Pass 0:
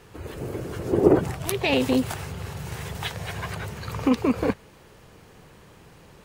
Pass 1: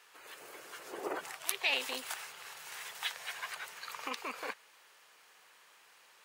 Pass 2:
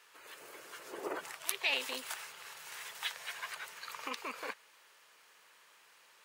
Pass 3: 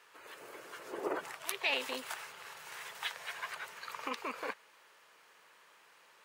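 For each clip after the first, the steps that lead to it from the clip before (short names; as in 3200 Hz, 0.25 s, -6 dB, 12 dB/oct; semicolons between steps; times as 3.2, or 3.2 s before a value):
HPF 1200 Hz 12 dB/oct; gain -4 dB
notch 760 Hz, Q 12; gain -1 dB
high shelf 2300 Hz -8 dB; gain +4 dB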